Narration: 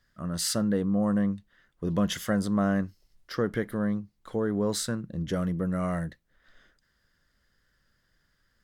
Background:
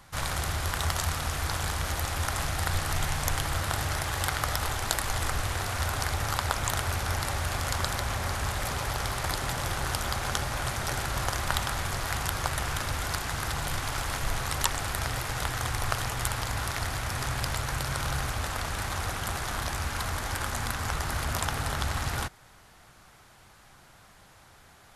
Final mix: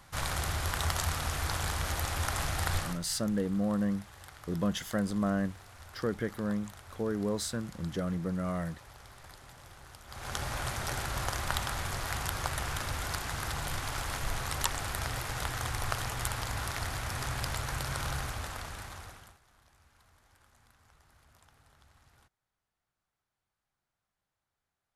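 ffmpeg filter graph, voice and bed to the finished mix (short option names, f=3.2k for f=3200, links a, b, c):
-filter_complex "[0:a]adelay=2650,volume=-4.5dB[a];[1:a]volume=15dB,afade=t=out:st=2.77:d=0.22:silence=0.112202,afade=t=in:st=10.07:d=0.4:silence=0.133352,afade=t=out:st=18.06:d=1.32:silence=0.0354813[b];[a][b]amix=inputs=2:normalize=0"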